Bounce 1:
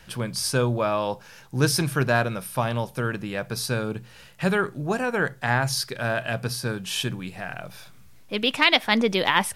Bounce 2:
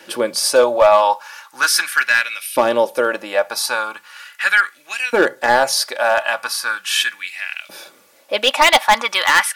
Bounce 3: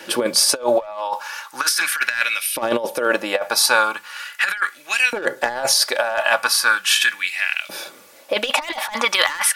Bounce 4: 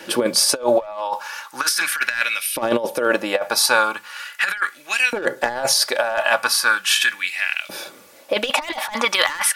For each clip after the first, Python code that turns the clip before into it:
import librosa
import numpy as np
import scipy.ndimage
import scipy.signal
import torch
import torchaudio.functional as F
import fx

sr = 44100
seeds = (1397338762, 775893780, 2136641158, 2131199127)

y1 = fx.filter_lfo_highpass(x, sr, shape='saw_up', hz=0.39, low_hz=350.0, high_hz=2800.0, q=2.7)
y1 = np.clip(10.0 ** (14.0 / 20.0) * y1, -1.0, 1.0) / 10.0 ** (14.0 / 20.0)
y1 = y1 + 0.53 * np.pad(y1, (int(3.5 * sr / 1000.0), 0))[:len(y1)]
y1 = y1 * 10.0 ** (7.5 / 20.0)
y2 = fx.over_compress(y1, sr, threshold_db=-19.0, ratio=-0.5)
y2 = y2 * 10.0 ** (1.0 / 20.0)
y3 = fx.low_shelf(y2, sr, hz=380.0, db=5.0)
y3 = y3 * 10.0 ** (-1.0 / 20.0)